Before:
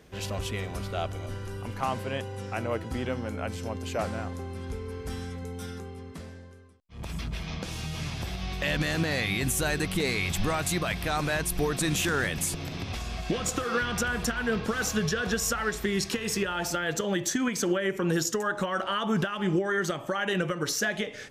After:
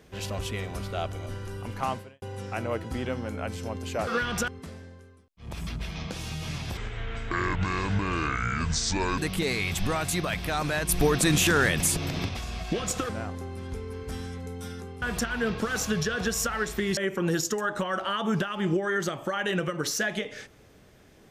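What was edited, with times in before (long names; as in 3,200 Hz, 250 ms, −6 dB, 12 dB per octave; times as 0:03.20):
0:01.91–0:02.22: fade out quadratic
0:04.07–0:06.00: swap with 0:13.67–0:14.08
0:08.29–0:09.76: play speed 61%
0:11.47–0:12.87: clip gain +5 dB
0:16.03–0:17.79: remove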